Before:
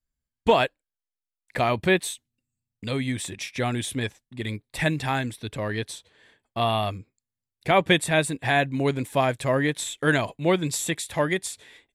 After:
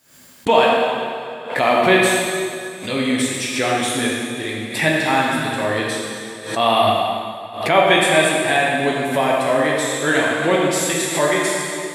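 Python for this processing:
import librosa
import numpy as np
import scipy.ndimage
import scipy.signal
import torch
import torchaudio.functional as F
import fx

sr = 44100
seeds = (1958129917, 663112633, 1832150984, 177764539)

p1 = fx.rev_plate(x, sr, seeds[0], rt60_s=2.4, hf_ratio=0.9, predelay_ms=0, drr_db=-4.5)
p2 = fx.rider(p1, sr, range_db=10, speed_s=2.0)
p3 = p1 + (p2 * librosa.db_to_amplitude(2.0))
p4 = scipy.signal.sosfilt(scipy.signal.butter(2, 230.0, 'highpass', fs=sr, output='sos'), p3)
p5 = fx.pre_swell(p4, sr, db_per_s=99.0)
y = p5 * librosa.db_to_amplitude(-5.0)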